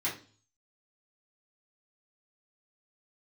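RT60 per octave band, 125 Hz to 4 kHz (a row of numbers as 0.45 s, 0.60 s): 0.70 s, 0.50 s, 0.45 s, 0.35 s, 0.35 s, 0.45 s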